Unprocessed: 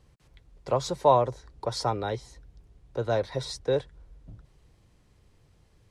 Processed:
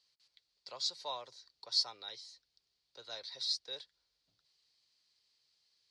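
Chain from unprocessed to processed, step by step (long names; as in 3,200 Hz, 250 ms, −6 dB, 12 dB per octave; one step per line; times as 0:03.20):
resonant band-pass 4,500 Hz, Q 5.4
level +7.5 dB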